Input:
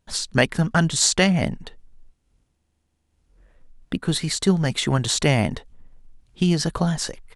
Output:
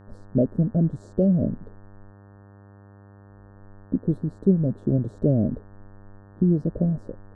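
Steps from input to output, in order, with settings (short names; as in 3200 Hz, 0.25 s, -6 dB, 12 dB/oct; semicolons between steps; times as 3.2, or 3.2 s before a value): elliptic low-pass 600 Hz, stop band 40 dB; bell 260 Hz +4.5 dB; buzz 100 Hz, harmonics 18, -47 dBFS -6 dB/oct; gain -1.5 dB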